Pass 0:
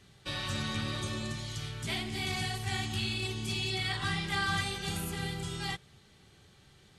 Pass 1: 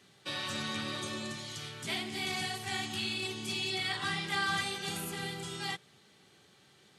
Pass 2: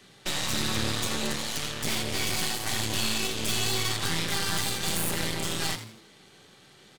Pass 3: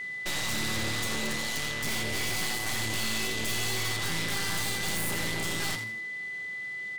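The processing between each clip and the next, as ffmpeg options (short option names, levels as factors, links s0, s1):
-af "highpass=200"
-filter_complex "[0:a]acrossover=split=240|4200[s0][s1][s2];[s1]acompressor=threshold=0.00708:ratio=6[s3];[s0][s3][s2]amix=inputs=3:normalize=0,aeval=exprs='0.0473*(cos(1*acos(clip(val(0)/0.0473,-1,1)))-cos(1*PI/2))+0.0188*(cos(6*acos(clip(val(0)/0.0473,-1,1)))-cos(6*PI/2))':c=same,asplit=5[s4][s5][s6][s7][s8];[s5]adelay=84,afreqshift=110,volume=0.266[s9];[s6]adelay=168,afreqshift=220,volume=0.0955[s10];[s7]adelay=252,afreqshift=330,volume=0.0347[s11];[s8]adelay=336,afreqshift=440,volume=0.0124[s12];[s4][s9][s10][s11][s12]amix=inputs=5:normalize=0,volume=2.24"
-af "aeval=exprs='val(0)+0.02*sin(2*PI*2000*n/s)':c=same,volume=15.8,asoftclip=hard,volume=0.0631"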